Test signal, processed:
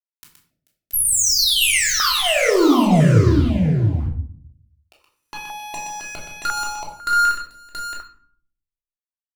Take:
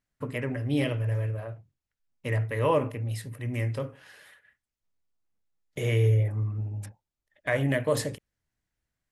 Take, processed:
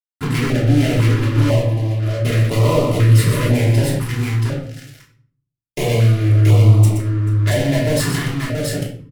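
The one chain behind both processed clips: compression 5:1, threshold -32 dBFS; comb of notches 800 Hz; fuzz box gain 44 dB, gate -50 dBFS; on a send: multi-tap echo 122/437/678 ms -7.5/-20/-3.5 dB; on the sum: simulated room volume 680 m³, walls furnished, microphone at 3.1 m; step-sequenced notch 2 Hz 590–1600 Hz; trim -6.5 dB

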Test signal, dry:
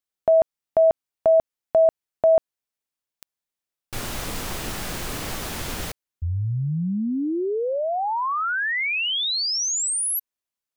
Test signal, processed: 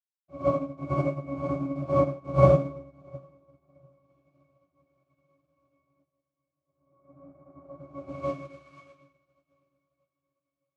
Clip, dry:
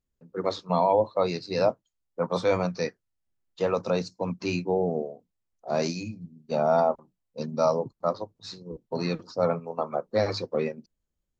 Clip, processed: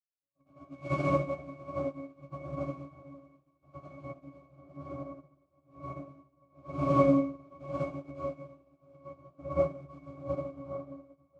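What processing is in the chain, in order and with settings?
high-pass 260 Hz 12 dB/octave; LFO low-pass saw down 0.84 Hz 820–2200 Hz; noise-vocoded speech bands 2; pitch-class resonator C#, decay 0.39 s; on a send: echo that smears into a reverb 661 ms, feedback 64%, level -12 dB; on the sum: plate-style reverb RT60 1.2 s, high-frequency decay 0.95×, pre-delay 85 ms, DRR -9 dB; upward expansion 2.5:1, over -47 dBFS; trim +4.5 dB

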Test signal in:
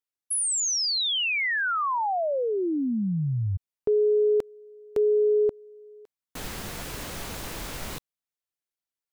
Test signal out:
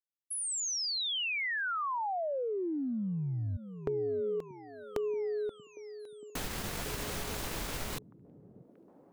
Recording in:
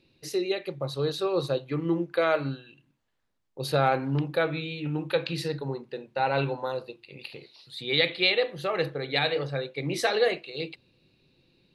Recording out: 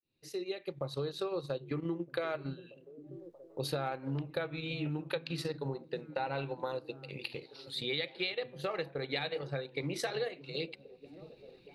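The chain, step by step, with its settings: fade-in on the opening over 1.24 s; transient shaper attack +1 dB, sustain -8 dB; compression 6:1, threshold -34 dBFS; on a send: repeats whose band climbs or falls 632 ms, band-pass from 160 Hz, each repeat 0.7 oct, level -10.5 dB; on the sum: trim +1 dB

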